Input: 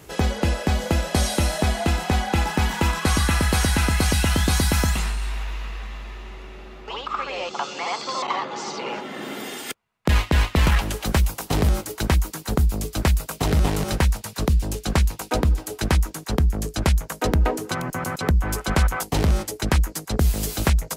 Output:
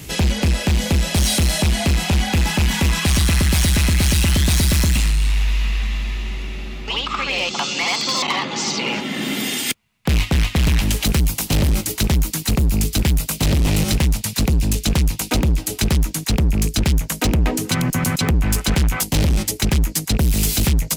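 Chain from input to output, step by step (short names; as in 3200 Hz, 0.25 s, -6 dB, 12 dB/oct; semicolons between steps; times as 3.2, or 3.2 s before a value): rattling part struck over -23 dBFS, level -28 dBFS; band shelf 760 Hz -10.5 dB 2.5 oct; in parallel at -2 dB: compressor, threshold -28 dBFS, peak gain reduction 13 dB; on the sum: overloaded stage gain 21 dB; gain +7.5 dB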